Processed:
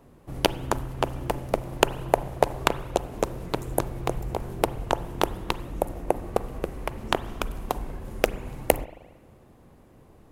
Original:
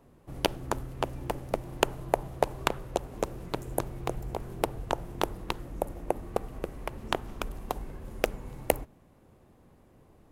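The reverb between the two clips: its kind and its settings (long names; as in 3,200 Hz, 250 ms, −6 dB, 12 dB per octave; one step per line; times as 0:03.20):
spring reverb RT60 1.2 s, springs 38/45 ms, chirp 65 ms, DRR 16 dB
level +5 dB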